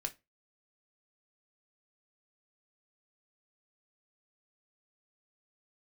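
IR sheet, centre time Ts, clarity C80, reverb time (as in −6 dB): 6 ms, 28.5 dB, non-exponential decay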